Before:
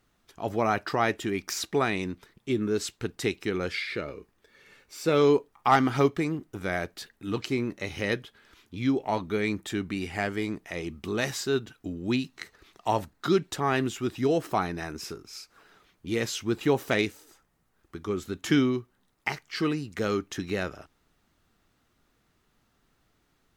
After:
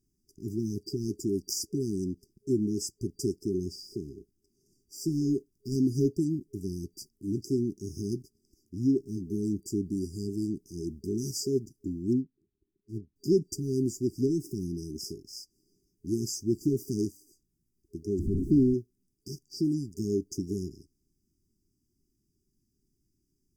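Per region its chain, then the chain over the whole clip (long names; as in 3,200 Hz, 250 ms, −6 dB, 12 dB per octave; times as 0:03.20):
0:12.13–0:13.16: volume swells 114 ms + linear-phase brick-wall low-pass 1,600 Hz + expander for the loud parts, over −47 dBFS
0:18.19–0:18.74: linear delta modulator 16 kbit/s, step −23.5 dBFS + low-shelf EQ 87 Hz +9.5 dB
whole clip: leveller curve on the samples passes 1; brick-wall band-stop 410–4,700 Hz; level −3 dB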